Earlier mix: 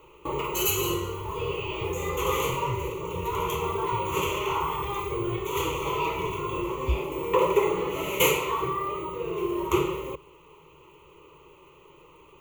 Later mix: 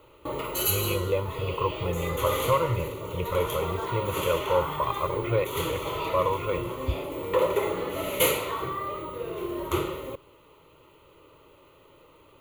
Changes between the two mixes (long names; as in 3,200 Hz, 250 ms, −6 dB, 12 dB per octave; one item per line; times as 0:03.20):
speech: remove inverse Chebyshev low-pass filter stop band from 550 Hz, stop band 70 dB
master: remove EQ curve with evenly spaced ripples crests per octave 0.74, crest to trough 11 dB